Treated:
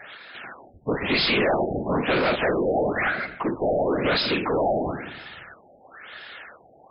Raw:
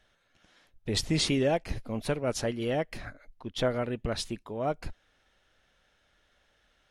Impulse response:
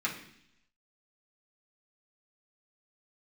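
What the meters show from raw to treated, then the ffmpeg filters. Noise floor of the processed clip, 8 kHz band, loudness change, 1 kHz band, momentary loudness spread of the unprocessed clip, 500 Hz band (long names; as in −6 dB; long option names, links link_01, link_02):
−54 dBFS, below −40 dB, +7.5 dB, +11.5 dB, 15 LU, +8.0 dB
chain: -filter_complex "[0:a]asplit=2[link_01][link_02];[1:a]atrim=start_sample=2205[link_03];[link_02][link_03]afir=irnorm=-1:irlink=0,volume=-8dB[link_04];[link_01][link_04]amix=inputs=2:normalize=0,afftfilt=real='hypot(re,im)*cos(2*PI*random(0))':imag='hypot(re,im)*sin(2*PI*random(1))':win_size=512:overlap=0.75,asplit=2[link_05][link_06];[link_06]highpass=frequency=720:poles=1,volume=36dB,asoftclip=type=tanh:threshold=-17.5dB[link_07];[link_05][link_07]amix=inputs=2:normalize=0,lowpass=frequency=6900:poles=1,volume=-6dB,afftfilt=real='re*lt(b*sr/1024,810*pow(5300/810,0.5+0.5*sin(2*PI*1*pts/sr)))':imag='im*lt(b*sr/1024,810*pow(5300/810,0.5+0.5*sin(2*PI*1*pts/sr)))':win_size=1024:overlap=0.75,volume=3dB"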